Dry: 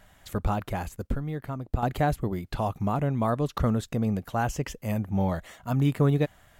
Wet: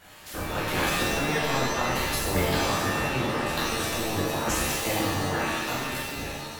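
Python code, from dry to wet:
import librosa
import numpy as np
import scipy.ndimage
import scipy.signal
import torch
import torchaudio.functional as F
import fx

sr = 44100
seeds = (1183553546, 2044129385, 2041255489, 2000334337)

y = fx.spec_clip(x, sr, under_db=20)
y = fx.over_compress(y, sr, threshold_db=-30.0, ratio=-0.5)
y = fx.rev_shimmer(y, sr, seeds[0], rt60_s=1.1, semitones=7, shimmer_db=-2, drr_db=-8.0)
y = y * 10.0 ** (-6.5 / 20.0)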